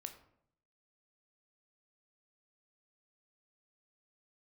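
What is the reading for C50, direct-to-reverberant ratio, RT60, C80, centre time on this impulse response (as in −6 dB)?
11.0 dB, 6.0 dB, 0.70 s, 13.5 dB, 13 ms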